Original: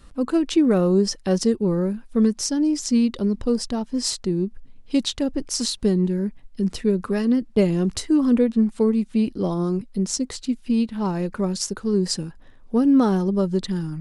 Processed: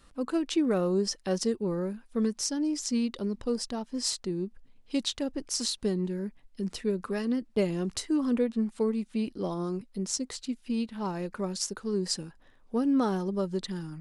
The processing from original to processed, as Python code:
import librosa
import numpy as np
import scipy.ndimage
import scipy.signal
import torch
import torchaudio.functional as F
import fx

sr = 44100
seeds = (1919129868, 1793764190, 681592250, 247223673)

y = fx.low_shelf(x, sr, hz=280.0, db=-8.0)
y = y * 10.0 ** (-5.0 / 20.0)